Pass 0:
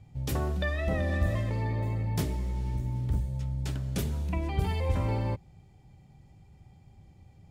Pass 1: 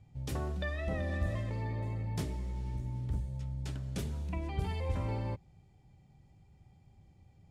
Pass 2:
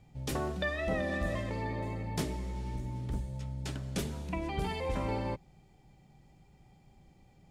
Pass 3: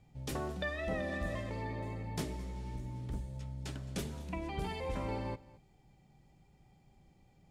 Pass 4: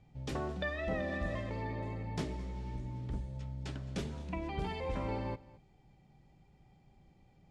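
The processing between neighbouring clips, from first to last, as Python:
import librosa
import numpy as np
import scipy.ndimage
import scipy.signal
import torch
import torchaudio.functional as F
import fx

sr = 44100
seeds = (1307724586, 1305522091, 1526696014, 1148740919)

y1 = scipy.signal.sosfilt(scipy.signal.butter(2, 11000.0, 'lowpass', fs=sr, output='sos'), x)
y1 = y1 * librosa.db_to_amplitude(-6.0)
y2 = fx.peak_eq(y1, sr, hz=88.0, db=-14.0, octaves=0.98)
y2 = y2 * librosa.db_to_amplitude(6.0)
y3 = y2 + 10.0 ** (-20.5 / 20.0) * np.pad(y2, (int(217 * sr / 1000.0), 0))[:len(y2)]
y3 = y3 * librosa.db_to_amplitude(-4.0)
y4 = fx.air_absorb(y3, sr, metres=78.0)
y4 = y4 * librosa.db_to_amplitude(1.0)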